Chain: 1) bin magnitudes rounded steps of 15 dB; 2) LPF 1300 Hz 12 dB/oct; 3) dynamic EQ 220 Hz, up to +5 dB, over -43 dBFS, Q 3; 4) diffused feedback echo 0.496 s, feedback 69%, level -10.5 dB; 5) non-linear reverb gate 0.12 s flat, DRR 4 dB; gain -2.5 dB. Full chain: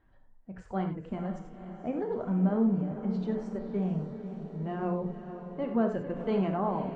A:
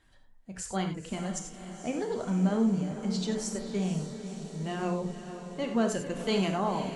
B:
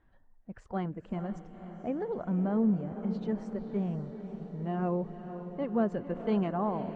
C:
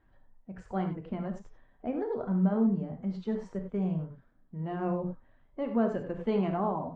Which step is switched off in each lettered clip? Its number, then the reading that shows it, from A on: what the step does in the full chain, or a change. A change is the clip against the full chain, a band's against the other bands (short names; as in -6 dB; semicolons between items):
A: 2, 2 kHz band +7.0 dB; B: 5, echo-to-direct -2.0 dB to -7.5 dB; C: 4, echo-to-direct -2.0 dB to -4.0 dB